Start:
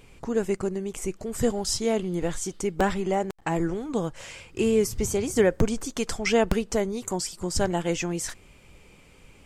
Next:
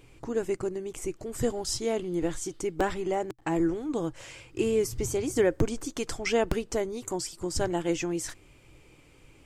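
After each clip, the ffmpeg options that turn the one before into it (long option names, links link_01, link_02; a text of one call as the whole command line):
ffmpeg -i in.wav -af "equalizer=frequency=125:width_type=o:width=0.33:gain=7,equalizer=frequency=200:width_type=o:width=0.33:gain=-8,equalizer=frequency=315:width_type=o:width=0.33:gain=9,volume=-4dB" out.wav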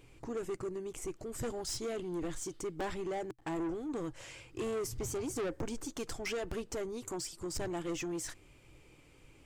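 ffmpeg -i in.wav -af "asoftclip=type=tanh:threshold=-28.5dB,volume=-4dB" out.wav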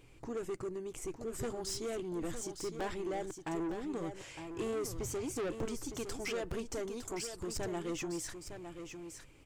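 ffmpeg -i in.wav -af "aecho=1:1:909:0.376,volume=-1dB" out.wav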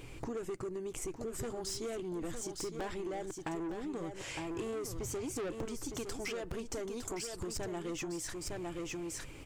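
ffmpeg -i in.wav -af "acompressor=threshold=-49dB:ratio=6,volume=11dB" out.wav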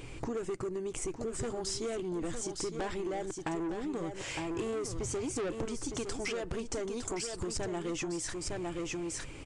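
ffmpeg -i in.wav -af "aresample=22050,aresample=44100,volume=3.5dB" out.wav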